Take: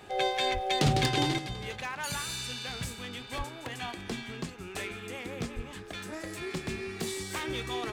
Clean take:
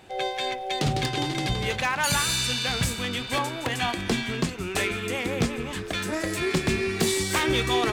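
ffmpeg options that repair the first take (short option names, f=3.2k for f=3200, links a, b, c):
-filter_complex "[0:a]bandreject=f=412.7:t=h:w=4,bandreject=f=825.4:t=h:w=4,bandreject=f=1.2381k:t=h:w=4,bandreject=f=1.6508k:t=h:w=4,asplit=3[a][b][c];[a]afade=t=out:st=0.53:d=0.02[d];[b]highpass=f=140:w=0.5412,highpass=f=140:w=1.3066,afade=t=in:st=0.53:d=0.02,afade=t=out:st=0.65:d=0.02[e];[c]afade=t=in:st=0.65:d=0.02[f];[d][e][f]amix=inputs=3:normalize=0,asplit=3[g][h][i];[g]afade=t=out:st=3.37:d=0.02[j];[h]highpass=f=140:w=0.5412,highpass=f=140:w=1.3066,afade=t=in:st=3.37:d=0.02,afade=t=out:st=3.49:d=0.02[k];[i]afade=t=in:st=3.49:d=0.02[l];[j][k][l]amix=inputs=3:normalize=0,asplit=3[m][n][o];[m]afade=t=out:st=5.55:d=0.02[p];[n]highpass=f=140:w=0.5412,highpass=f=140:w=1.3066,afade=t=in:st=5.55:d=0.02,afade=t=out:st=5.67:d=0.02[q];[o]afade=t=in:st=5.67:d=0.02[r];[p][q][r]amix=inputs=3:normalize=0,asetnsamples=n=441:p=0,asendcmd='1.38 volume volume 11dB',volume=0dB"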